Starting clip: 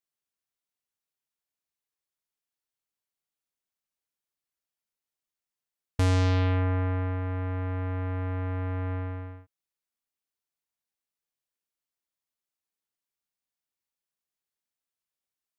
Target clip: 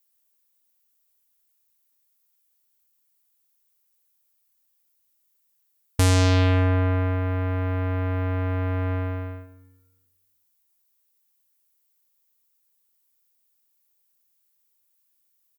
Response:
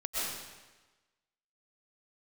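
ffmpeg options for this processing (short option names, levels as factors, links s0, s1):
-filter_complex "[0:a]aemphasis=mode=production:type=50fm,asplit=2[s0][s1];[s1]adelay=110,highpass=300,lowpass=3400,asoftclip=type=hard:threshold=0.0944,volume=0.224[s2];[s0][s2]amix=inputs=2:normalize=0,asplit=2[s3][s4];[1:a]atrim=start_sample=2205,lowpass=2300,adelay=16[s5];[s4][s5]afir=irnorm=-1:irlink=0,volume=0.106[s6];[s3][s6]amix=inputs=2:normalize=0,volume=1.88"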